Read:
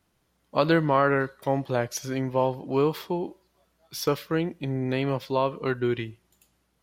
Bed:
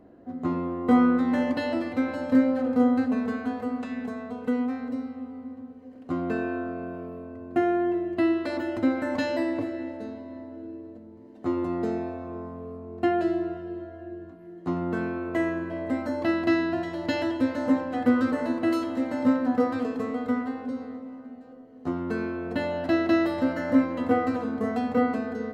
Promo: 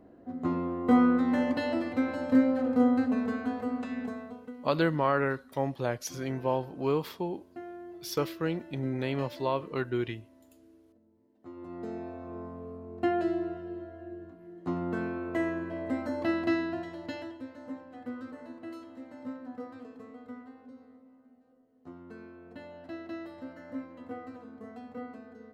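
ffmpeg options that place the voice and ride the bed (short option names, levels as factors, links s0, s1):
-filter_complex "[0:a]adelay=4100,volume=0.562[s0];[1:a]volume=4.47,afade=t=out:st=4.06:d=0.47:silence=0.141254,afade=t=in:st=11.53:d=0.9:silence=0.16788,afade=t=out:st=16.37:d=1.05:silence=0.199526[s1];[s0][s1]amix=inputs=2:normalize=0"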